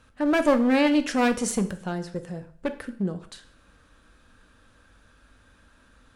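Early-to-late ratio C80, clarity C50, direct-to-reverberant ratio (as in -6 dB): 17.5 dB, 14.0 dB, 8.5 dB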